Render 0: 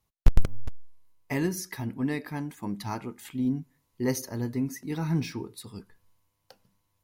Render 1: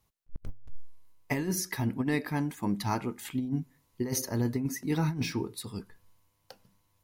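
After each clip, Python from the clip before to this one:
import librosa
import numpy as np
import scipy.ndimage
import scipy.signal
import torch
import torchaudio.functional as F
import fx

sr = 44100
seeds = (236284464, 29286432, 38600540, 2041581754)

y = fx.over_compress(x, sr, threshold_db=-29.0, ratio=-0.5)
y = y * librosa.db_to_amplitude(-1.5)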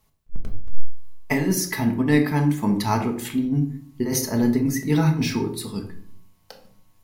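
y = fx.room_shoebox(x, sr, seeds[0], volume_m3=780.0, walls='furnished', distance_m=1.5)
y = y * librosa.db_to_amplitude(6.5)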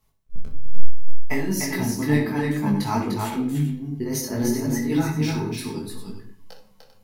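y = fx.echo_multitap(x, sr, ms=(61, 299, 395), db=(-13.0, -4.5, -12.0))
y = fx.detune_double(y, sr, cents=22)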